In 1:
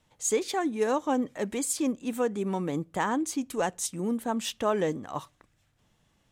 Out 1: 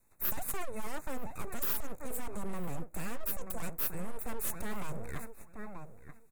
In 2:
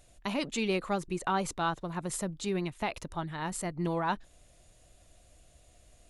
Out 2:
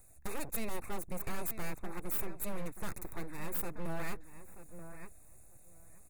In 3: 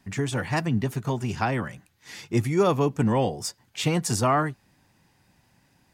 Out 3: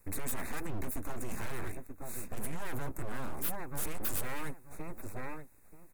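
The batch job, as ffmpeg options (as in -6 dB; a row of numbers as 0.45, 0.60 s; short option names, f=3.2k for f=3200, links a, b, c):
-filter_complex "[0:a]aeval=exprs='abs(val(0))':c=same,asplit=2[a][b];[b]adelay=932,lowpass=f=2.4k:p=1,volume=-13dB,asplit=2[c][d];[d]adelay=932,lowpass=f=2.4k:p=1,volume=0.16[e];[c][e]amix=inputs=2:normalize=0[f];[a][f]amix=inputs=2:normalize=0,alimiter=limit=-20.5dB:level=0:latency=1:release=32,acrossover=split=700|1100[g][h][i];[i]aexciter=amount=12.6:drive=4.4:freq=7.3k[j];[g][h][j]amix=inputs=3:normalize=0,asuperstop=centerf=3100:order=20:qfactor=3.5,bass=f=250:g=4,treble=f=4k:g=-11,asoftclip=type=hard:threshold=-24.5dB,volume=-3.5dB"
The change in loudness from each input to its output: -9.0, -7.0, -14.5 LU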